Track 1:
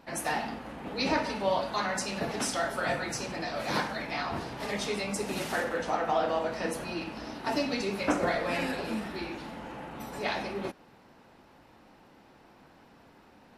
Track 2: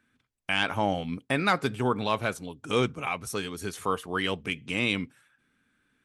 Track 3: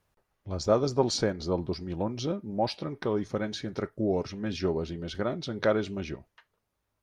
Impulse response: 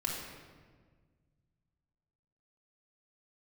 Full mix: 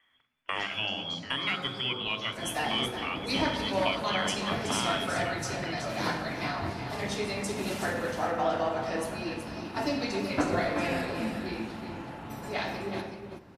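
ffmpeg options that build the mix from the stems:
-filter_complex "[0:a]equalizer=frequency=95:width=1.5:gain=9,adelay=2300,volume=-4.5dB,asplit=3[link_01][link_02][link_03];[link_02]volume=-7dB[link_04];[link_03]volume=-5.5dB[link_05];[1:a]equalizer=frequency=5400:width=0.56:gain=4,volume=1dB,asplit=2[link_06][link_07];[link_07]volume=-18dB[link_08];[2:a]highpass=1200,acompressor=threshold=-39dB:ratio=5,volume=0.5dB,asplit=2[link_09][link_10];[link_10]volume=-12.5dB[link_11];[link_06][link_09]amix=inputs=2:normalize=0,lowpass=frequency=3000:width_type=q:width=0.5098,lowpass=frequency=3000:width_type=q:width=0.6013,lowpass=frequency=3000:width_type=q:width=0.9,lowpass=frequency=3000:width_type=q:width=2.563,afreqshift=-3500,acompressor=threshold=-36dB:ratio=2,volume=0dB[link_12];[3:a]atrim=start_sample=2205[link_13];[link_04][link_08][link_11]amix=inputs=3:normalize=0[link_14];[link_14][link_13]afir=irnorm=-1:irlink=0[link_15];[link_05]aecho=0:1:375:1[link_16];[link_01][link_12][link_15][link_16]amix=inputs=4:normalize=0"

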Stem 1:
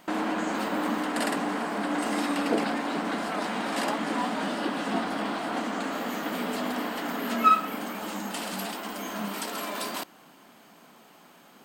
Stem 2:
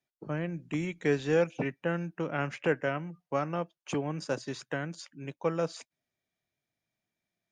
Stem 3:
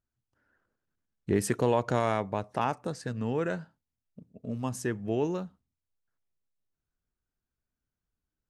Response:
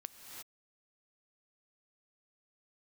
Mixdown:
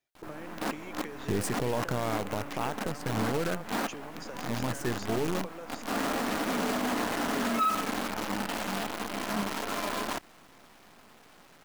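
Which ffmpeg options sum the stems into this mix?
-filter_complex "[0:a]lowpass=2400,asoftclip=type=tanh:threshold=-14.5dB,adelay=150,volume=1.5dB[link_01];[1:a]equalizer=frequency=180:width_type=o:width=0.97:gain=-10.5,alimiter=level_in=0.5dB:limit=-24dB:level=0:latency=1:release=52,volume=-0.5dB,acompressor=threshold=-42dB:ratio=16,volume=2dB,asplit=2[link_02][link_03];[2:a]aeval=exprs='if(lt(val(0),0),0.708*val(0),val(0))':channel_layout=same,lowshelf=frequency=80:gain=9,volume=1dB[link_04];[link_03]apad=whole_len=520348[link_05];[link_01][link_05]sidechaincompress=threshold=-58dB:ratio=4:attack=9.1:release=117[link_06];[link_06][link_04]amix=inputs=2:normalize=0,acrusher=bits=6:dc=4:mix=0:aa=0.000001,alimiter=limit=-21dB:level=0:latency=1:release=34,volume=0dB[link_07];[link_02][link_07]amix=inputs=2:normalize=0"

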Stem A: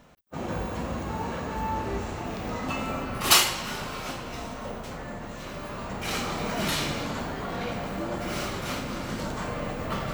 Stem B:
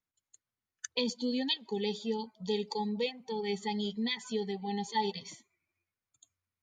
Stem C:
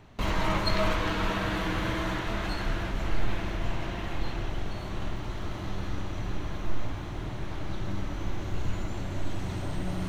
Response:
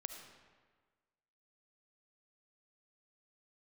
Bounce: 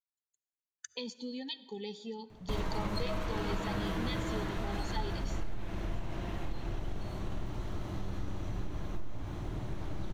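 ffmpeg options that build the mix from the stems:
-filter_complex "[1:a]agate=range=-19dB:threshold=-54dB:ratio=16:detection=peak,acompressor=threshold=-45dB:ratio=1.5,volume=-5dB,asplit=2[link_01][link_02];[link_02]volume=-6dB[link_03];[2:a]equalizer=frequency=2300:width_type=o:width=2.7:gain=-6,acompressor=threshold=-28dB:ratio=6,adelay=2300,volume=-2dB[link_04];[3:a]atrim=start_sample=2205[link_05];[link_03][link_05]afir=irnorm=-1:irlink=0[link_06];[link_01][link_04][link_06]amix=inputs=3:normalize=0"

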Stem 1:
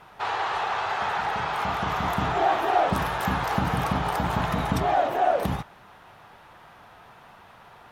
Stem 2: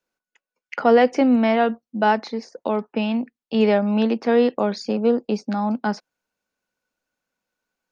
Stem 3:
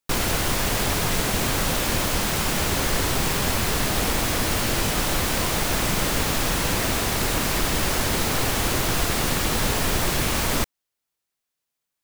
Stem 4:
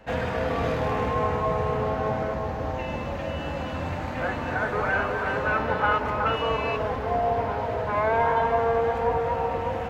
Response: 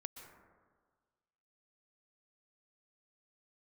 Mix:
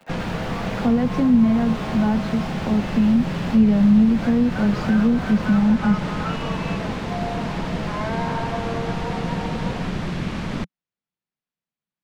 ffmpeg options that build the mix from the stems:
-filter_complex "[0:a]acompressor=threshold=-34dB:ratio=6,acrusher=bits=6:mix=0:aa=0.000001,acrossover=split=3800[link_01][link_02];[link_02]acompressor=threshold=-50dB:ratio=4:attack=1:release=60[link_03];[link_01][link_03]amix=inputs=2:normalize=0,volume=-5dB[link_04];[1:a]equalizer=frequency=230:width=2:gain=8,volume=-9.5dB[link_05];[2:a]lowpass=3400,volume=-7dB[link_06];[3:a]highpass=520,volume=-5dB[link_07];[link_04][link_05][link_06][link_07]amix=inputs=4:normalize=0,equalizer=frequency=180:width_type=o:width=0.94:gain=14.5,acrossover=split=210[link_08][link_09];[link_09]acompressor=threshold=-20dB:ratio=6[link_10];[link_08][link_10]amix=inputs=2:normalize=0"

